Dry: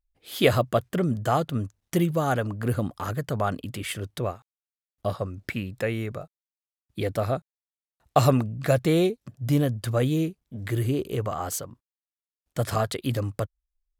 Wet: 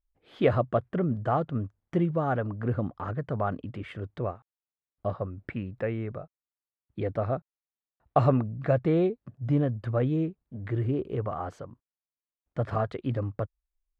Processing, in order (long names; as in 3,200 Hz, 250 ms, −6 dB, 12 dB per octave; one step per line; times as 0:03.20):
low-pass filter 1,600 Hz 12 dB per octave
level −2.5 dB